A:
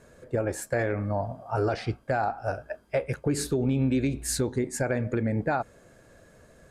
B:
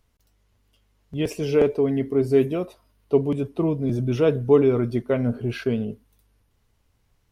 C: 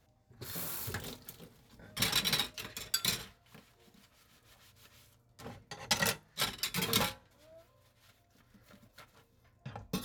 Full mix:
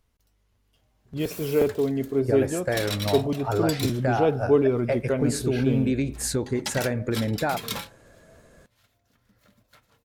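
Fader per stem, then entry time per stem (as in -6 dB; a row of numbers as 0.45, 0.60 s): +1.0, -3.0, -1.5 dB; 1.95, 0.00, 0.75 s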